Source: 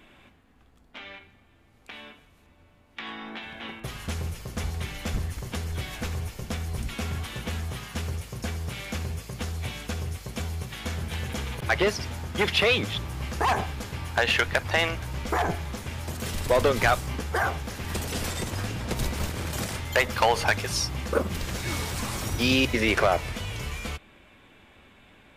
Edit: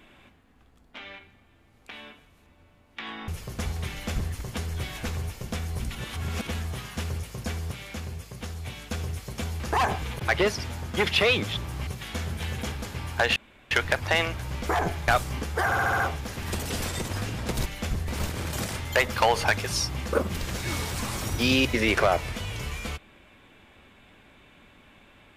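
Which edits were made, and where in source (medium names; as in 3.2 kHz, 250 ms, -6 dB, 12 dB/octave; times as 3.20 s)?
3.28–4.26 s: delete
4.89–5.31 s: copy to 19.08 s
6.93–7.45 s: reverse
8.70–9.89 s: gain -4 dB
10.58–11.43 s: swap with 13.28–13.70 s
14.34 s: insert room tone 0.35 s
15.71–16.85 s: delete
17.42 s: stutter 0.07 s, 6 plays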